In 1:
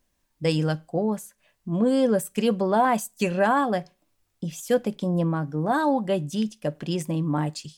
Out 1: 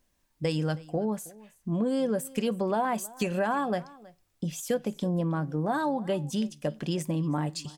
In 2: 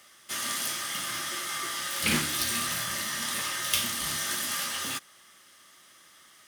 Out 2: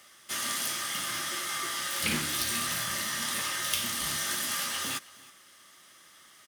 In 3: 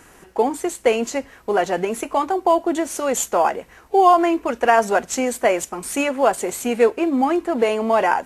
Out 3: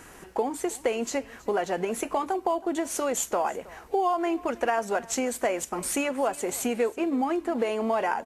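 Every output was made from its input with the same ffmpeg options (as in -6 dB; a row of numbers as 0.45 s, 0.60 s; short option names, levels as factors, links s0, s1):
-af "acompressor=threshold=0.0501:ratio=3,aecho=1:1:320:0.0841"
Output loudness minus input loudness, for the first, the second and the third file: -5.0 LU, -1.0 LU, -8.5 LU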